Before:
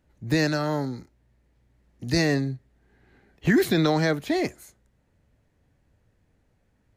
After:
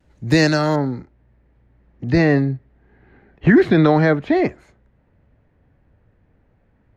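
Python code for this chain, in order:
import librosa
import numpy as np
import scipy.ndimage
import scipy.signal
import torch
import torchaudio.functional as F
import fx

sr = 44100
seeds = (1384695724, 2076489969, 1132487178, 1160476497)

y = fx.lowpass(x, sr, hz=fx.steps((0.0, 8300.0), (0.76, 2100.0)), slope=12)
y = fx.vibrato(y, sr, rate_hz=0.46, depth_cents=22.0)
y = y * librosa.db_to_amplitude(8.0)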